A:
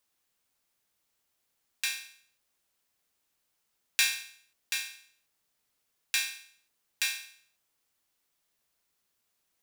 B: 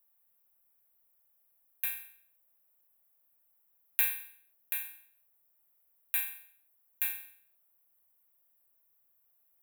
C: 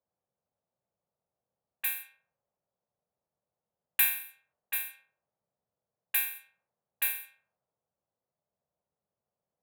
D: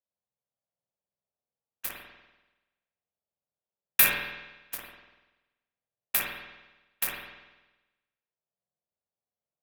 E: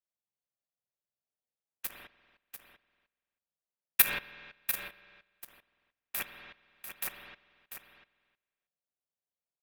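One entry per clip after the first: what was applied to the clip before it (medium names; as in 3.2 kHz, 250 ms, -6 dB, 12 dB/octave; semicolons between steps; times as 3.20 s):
FFT filter 180 Hz 0 dB, 300 Hz -13 dB, 560 Hz +3 dB, 1.1 kHz -2 dB, 2.3 kHz -6 dB, 3.7 kHz -12 dB, 5.3 kHz -28 dB, 13 kHz +13 dB; trim -2.5 dB
high-pass 91 Hz; level-controlled noise filter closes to 610 Hz, open at -34.5 dBFS; trim +5.5 dB
Chebyshev shaper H 7 -16 dB, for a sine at -9 dBFS; spring tank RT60 1.1 s, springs 48 ms, chirp 80 ms, DRR -2 dB; trim +6.5 dB
level held to a coarse grid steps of 17 dB; delay 694 ms -9.5 dB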